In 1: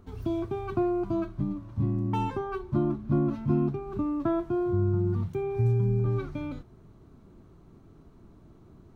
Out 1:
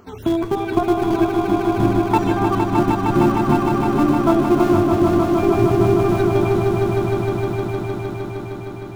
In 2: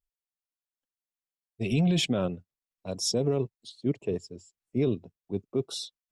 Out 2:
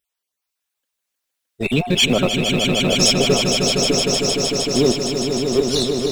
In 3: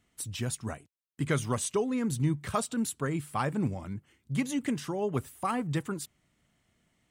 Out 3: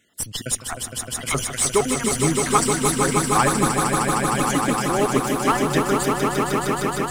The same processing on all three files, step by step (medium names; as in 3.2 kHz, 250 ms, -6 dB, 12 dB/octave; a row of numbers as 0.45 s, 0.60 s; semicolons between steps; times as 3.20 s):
random holes in the spectrogram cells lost 34%; high-pass 490 Hz 6 dB/octave; in parallel at -7 dB: Schmitt trigger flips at -31.5 dBFS; on the sum: echo with a slow build-up 154 ms, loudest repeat 5, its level -6 dB; peak normalisation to -3 dBFS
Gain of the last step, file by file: +15.0 dB, +14.5 dB, +12.5 dB